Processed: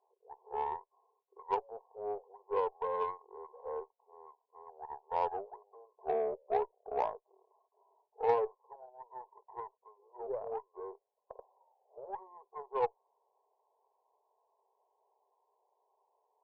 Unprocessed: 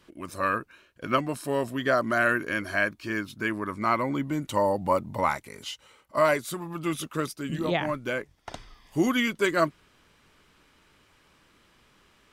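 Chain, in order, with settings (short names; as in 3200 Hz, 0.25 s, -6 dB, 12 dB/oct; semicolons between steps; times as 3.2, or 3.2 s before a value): varispeed -25%; brick-wall FIR band-pass 380–1100 Hz; added harmonics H 3 -19 dB, 8 -34 dB, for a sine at -11 dBFS; gain -5.5 dB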